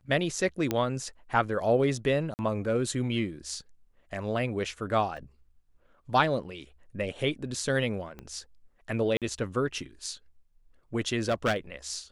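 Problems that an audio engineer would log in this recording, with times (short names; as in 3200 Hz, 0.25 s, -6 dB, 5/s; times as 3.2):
0.71 pop -13 dBFS
2.34–2.39 gap 49 ms
5.17 gap 2.5 ms
8.19 pop -27 dBFS
9.17–9.22 gap 47 ms
11.19–11.56 clipped -21 dBFS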